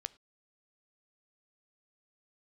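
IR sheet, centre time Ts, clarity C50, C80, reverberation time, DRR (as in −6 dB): 1 ms, 22.0 dB, 26.0 dB, non-exponential decay, 16.5 dB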